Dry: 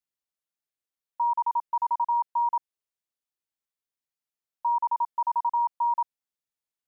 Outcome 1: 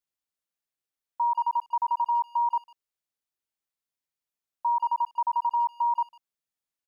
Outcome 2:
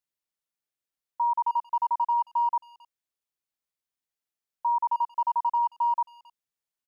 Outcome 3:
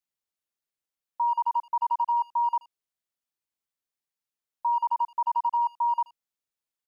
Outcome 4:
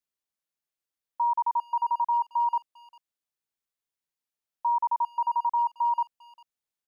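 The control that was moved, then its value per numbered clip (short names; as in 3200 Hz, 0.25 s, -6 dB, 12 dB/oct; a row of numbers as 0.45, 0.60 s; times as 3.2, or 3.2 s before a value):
speakerphone echo, time: 150, 270, 80, 400 ms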